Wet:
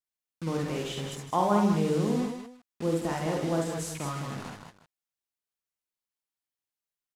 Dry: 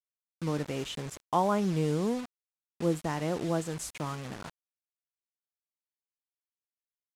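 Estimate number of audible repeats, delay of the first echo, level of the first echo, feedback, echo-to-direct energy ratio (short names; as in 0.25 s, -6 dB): 4, 49 ms, -4.5 dB, no steady repeat, 0.5 dB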